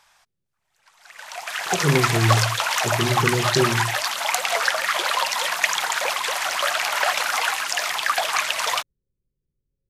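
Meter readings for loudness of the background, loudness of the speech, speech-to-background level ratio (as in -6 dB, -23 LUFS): -21.5 LUFS, -24.0 LUFS, -2.5 dB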